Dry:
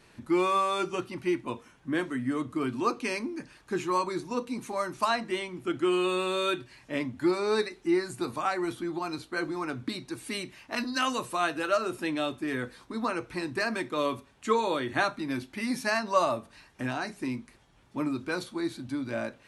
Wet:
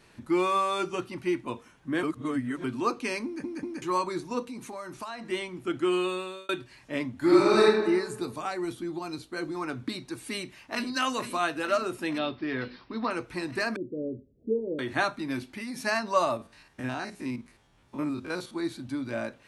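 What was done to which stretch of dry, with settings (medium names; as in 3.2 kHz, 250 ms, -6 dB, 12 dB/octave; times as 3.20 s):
2.03–2.64 s: reverse
3.25 s: stutter in place 0.19 s, 3 plays
4.45–5.29 s: compression 4:1, threshold -36 dBFS
5.97–6.49 s: fade out
7.16–7.66 s: reverb throw, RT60 1.3 s, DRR -6 dB
8.20–9.55 s: peaking EQ 1.3 kHz -5.5 dB 2.1 oct
10.30–10.92 s: echo throw 460 ms, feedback 80%, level -11 dB
12.18–13.11 s: careless resampling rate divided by 4×, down none, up filtered
13.76–14.79 s: steep low-pass 510 Hz 48 dB/octave
15.40–15.85 s: compression, threshold -33 dBFS
16.37–18.54 s: spectrogram pixelated in time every 50 ms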